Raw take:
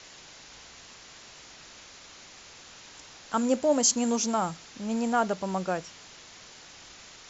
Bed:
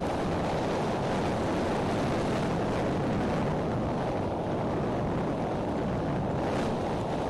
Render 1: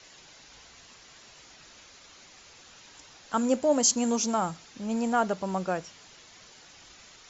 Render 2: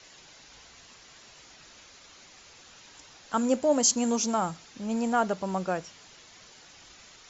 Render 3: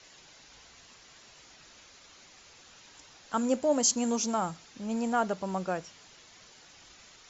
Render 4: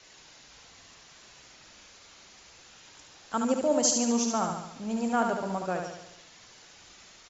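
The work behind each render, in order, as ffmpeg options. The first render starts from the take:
-af "afftdn=nr=6:nf=-50"
-af anull
-af "volume=0.75"
-af "aecho=1:1:72|144|216|288|360|432|504:0.562|0.309|0.17|0.0936|0.0515|0.0283|0.0156"

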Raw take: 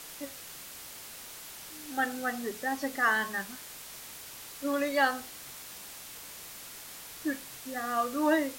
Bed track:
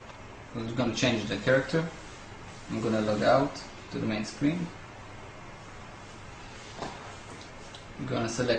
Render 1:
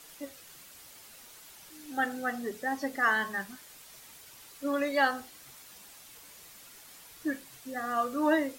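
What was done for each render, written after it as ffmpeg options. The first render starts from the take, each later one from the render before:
-af "afftdn=nr=8:nf=-46"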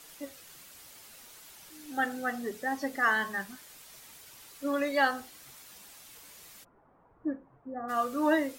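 -filter_complex "[0:a]asplit=3[s0][s1][s2];[s0]afade=t=out:st=6.63:d=0.02[s3];[s1]lowpass=f=1100:w=0.5412,lowpass=f=1100:w=1.3066,afade=t=in:st=6.63:d=0.02,afade=t=out:st=7.88:d=0.02[s4];[s2]afade=t=in:st=7.88:d=0.02[s5];[s3][s4][s5]amix=inputs=3:normalize=0"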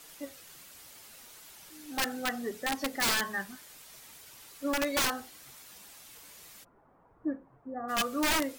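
-af "aeval=exprs='(mod(12.6*val(0)+1,2)-1)/12.6':c=same"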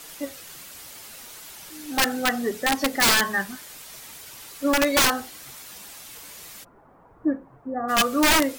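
-af "volume=2.99"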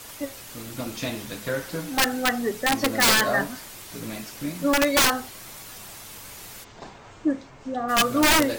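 -filter_complex "[1:a]volume=0.596[s0];[0:a][s0]amix=inputs=2:normalize=0"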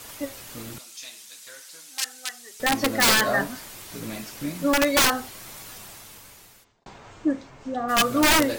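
-filter_complex "[0:a]asettb=1/sr,asplit=3[s0][s1][s2];[s0]atrim=end=0.784[s3];[s1]atrim=start=0.78:end=2.6,asetpts=PTS-STARTPTS,afade=t=in:d=0.004:c=qsin,afade=t=out:st=1.816:d=0.004:c=qsin,bandpass=f=7200:t=q:w=1[s4];[s2]atrim=start=2.596[s5];[s3][s4]acrossfade=d=0.004:c1=hsin:c2=qsin[s6];[s6][s5]acrossfade=d=0.004:c1=qsin:c2=hsin,asplit=2[s7][s8];[s7]atrim=end=6.86,asetpts=PTS-STARTPTS,afade=t=out:st=5.7:d=1.16[s9];[s8]atrim=start=6.86,asetpts=PTS-STARTPTS,afade=t=in:d=0.004:c=hsin[s10];[s9][s10]concat=n=2:v=0:a=1"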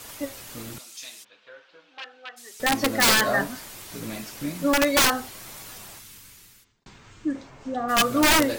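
-filter_complex "[0:a]asplit=3[s0][s1][s2];[s0]afade=t=out:st=1.23:d=0.02[s3];[s1]highpass=100,equalizer=f=150:t=q:w=4:g=-7,equalizer=f=240:t=q:w=4:g=-6,equalizer=f=500:t=q:w=4:g=5,equalizer=f=2000:t=q:w=4:g=-8,lowpass=f=2800:w=0.5412,lowpass=f=2800:w=1.3066,afade=t=in:st=1.23:d=0.02,afade=t=out:st=2.36:d=0.02[s4];[s2]afade=t=in:st=2.36:d=0.02[s5];[s3][s4][s5]amix=inputs=3:normalize=0,asettb=1/sr,asplit=3[s6][s7][s8];[s6]atrim=end=5.994[s9];[s7]atrim=start=5.99:end=7.35,asetpts=PTS-STARTPTS,afade=t=in:d=0.004:c=qsin,afade=t=out:st=1.356:d=0.004:c=qsin,equalizer=f=670:t=o:w=1.4:g=-13[s10];[s8]atrim=start=7.346[s11];[s9][s10]acrossfade=d=0.004:c1=hsin:c2=qsin[s12];[s12][s11]acrossfade=d=0.004:c1=qsin:c2=hsin"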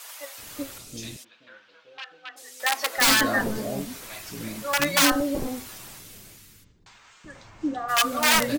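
-filter_complex "[0:a]acrossover=split=580[s0][s1];[s0]adelay=380[s2];[s2][s1]amix=inputs=2:normalize=0"

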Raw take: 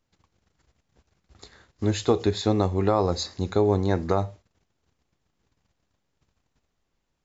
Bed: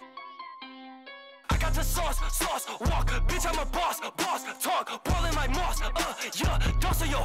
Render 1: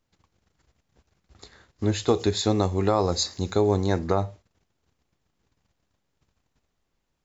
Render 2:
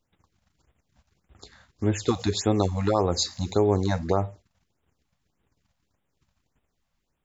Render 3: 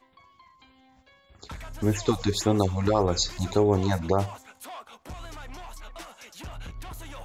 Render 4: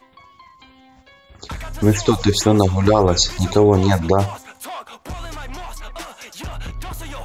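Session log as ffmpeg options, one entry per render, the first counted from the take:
-filter_complex "[0:a]asettb=1/sr,asplit=3[s0][s1][s2];[s0]atrim=end=2.084[s3];[s1]atrim=start=2.08:end=3.99,asetpts=PTS-STARTPTS,afade=t=in:d=0.004:c=qsin,afade=t=out:st=1.906:d=0.004:c=qsin,aemphasis=mode=production:type=50fm[s4];[s2]atrim=start=3.986[s5];[s3][s4]acrossfade=d=0.004:c1=hsin:c2=qsin[s6];[s6][s5]acrossfade=d=0.004:c1=qsin:c2=hsin"
-af "afftfilt=real='re*(1-between(b*sr/1024,330*pow(5500/330,0.5+0.5*sin(2*PI*1.7*pts/sr))/1.41,330*pow(5500/330,0.5+0.5*sin(2*PI*1.7*pts/sr))*1.41))':imag='im*(1-between(b*sr/1024,330*pow(5500/330,0.5+0.5*sin(2*PI*1.7*pts/sr))/1.41,330*pow(5500/330,0.5+0.5*sin(2*PI*1.7*pts/sr))*1.41))':win_size=1024:overlap=0.75"
-filter_complex "[1:a]volume=0.211[s0];[0:a][s0]amix=inputs=2:normalize=0"
-af "volume=2.99,alimiter=limit=0.794:level=0:latency=1"

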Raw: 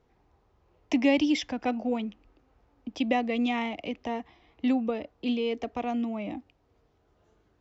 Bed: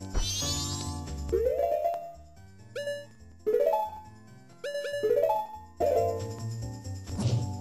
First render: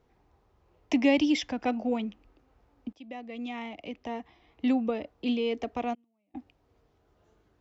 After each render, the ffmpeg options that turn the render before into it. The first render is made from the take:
-filter_complex "[0:a]asplit=3[s0][s1][s2];[s0]afade=t=out:st=5.93:d=0.02[s3];[s1]agate=range=0.00708:threshold=0.0631:ratio=16:release=100:detection=peak,afade=t=in:st=5.93:d=0.02,afade=t=out:st=6.34:d=0.02[s4];[s2]afade=t=in:st=6.34:d=0.02[s5];[s3][s4][s5]amix=inputs=3:normalize=0,asplit=2[s6][s7];[s6]atrim=end=2.93,asetpts=PTS-STARTPTS,afade=t=out:st=2.926:d=0.004:c=hsin:silence=0.0630957[s8];[s7]atrim=start=2.93,asetpts=PTS-STARTPTS,afade=t=in:d=1.82:silence=0.0630957[s9];[s8][s9]concat=n=2:v=0:a=1"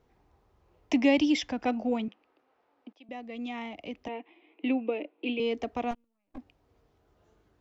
-filter_complex "[0:a]asettb=1/sr,asplit=3[s0][s1][s2];[s0]atrim=end=2.084[s3];[s1]atrim=start=2.08:end=3.09,asetpts=PTS-STARTPTS,afade=t=in:d=0.004:c=qsin,afade=t=out:st=1.006:d=0.004:c=qsin,highpass=420,lowpass=3900[s4];[s2]atrim=start=3.086[s5];[s3][s4]acrossfade=d=0.004:c1=hsin:c2=qsin[s6];[s6][s5]acrossfade=d=0.004:c1=qsin:c2=hsin,asettb=1/sr,asplit=3[s7][s8][s9];[s7]atrim=end=4.084[s10];[s8]atrim=start=4.08:end=5.4,asetpts=PTS-STARTPTS,afade=t=in:d=0.004:c=qsin,afade=t=out:st=1.316:d=0.004:c=qsin,highpass=f=290:w=0.5412,highpass=f=290:w=1.3066,equalizer=f=320:t=q:w=4:g=10,equalizer=f=760:t=q:w=4:g=-4,equalizer=f=1200:t=q:w=4:g=-7,equalizer=f=1700:t=q:w=4:g=-7,equalizer=f=2500:t=q:w=4:g=9,lowpass=f=3100:w=0.5412,lowpass=f=3100:w=1.3066[s11];[s9]atrim=start=5.396[s12];[s10][s11]acrossfade=d=0.004:c1=hsin:c2=qsin[s13];[s13][s12]acrossfade=d=0.004:c1=qsin:c2=hsin,asettb=1/sr,asplit=3[s14][s15][s16];[s14]atrim=end=5.914[s17];[s15]atrim=start=5.91:end=6.38,asetpts=PTS-STARTPTS,afade=t=in:d=0.004:c=qsin,afade=t=out:st=0.466:d=0.004:c=qsin,aeval=exprs='max(val(0),0)':c=same[s18];[s16]atrim=start=6.376[s19];[s17][s18]acrossfade=d=0.004:c1=hsin:c2=qsin[s20];[s20][s19]acrossfade=d=0.004:c1=qsin:c2=hsin"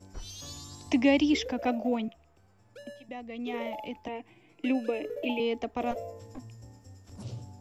-filter_complex "[1:a]volume=0.237[s0];[0:a][s0]amix=inputs=2:normalize=0"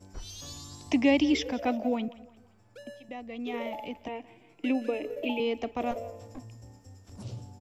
-af "aecho=1:1:174|348|522:0.106|0.0434|0.0178"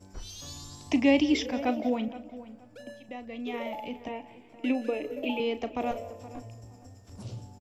-filter_complex "[0:a]asplit=2[s0][s1];[s1]adelay=36,volume=0.224[s2];[s0][s2]amix=inputs=2:normalize=0,asplit=2[s3][s4];[s4]adelay=472,lowpass=f=2100:p=1,volume=0.168,asplit=2[s5][s6];[s6]adelay=472,lowpass=f=2100:p=1,volume=0.25,asplit=2[s7][s8];[s8]adelay=472,lowpass=f=2100:p=1,volume=0.25[s9];[s3][s5][s7][s9]amix=inputs=4:normalize=0"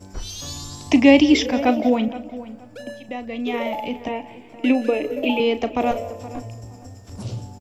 -af "volume=3.16"

